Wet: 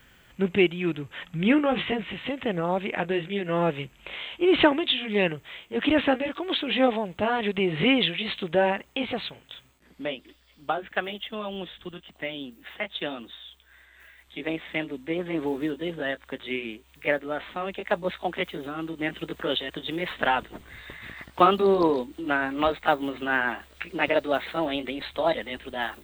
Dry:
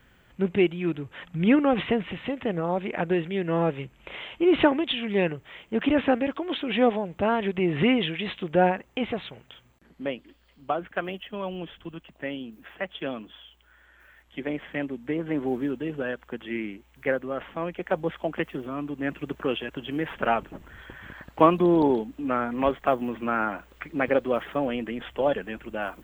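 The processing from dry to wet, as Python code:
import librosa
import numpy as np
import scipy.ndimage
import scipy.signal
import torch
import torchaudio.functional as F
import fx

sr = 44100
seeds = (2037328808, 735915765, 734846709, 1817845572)

y = fx.pitch_glide(x, sr, semitones=2.5, runs='starting unshifted')
y = fx.high_shelf(y, sr, hz=2100.0, db=9.0)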